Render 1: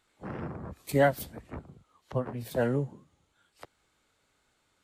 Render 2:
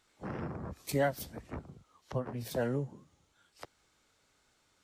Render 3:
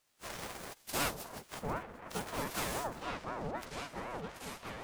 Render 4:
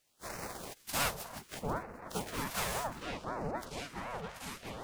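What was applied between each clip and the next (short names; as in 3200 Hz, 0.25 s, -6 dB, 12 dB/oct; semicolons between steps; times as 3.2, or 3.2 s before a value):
bell 5600 Hz +6.5 dB 0.52 oct; compressor 1.5:1, threshold -37 dBFS, peak gain reduction 7 dB
spectral whitening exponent 0.3; repeats that get brighter 0.694 s, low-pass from 750 Hz, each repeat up 1 oct, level 0 dB; ring modulator with a swept carrier 580 Hz, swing 50%, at 3.9 Hz; gain -2 dB
LFO notch sine 0.65 Hz 280–3400 Hz; gain +2 dB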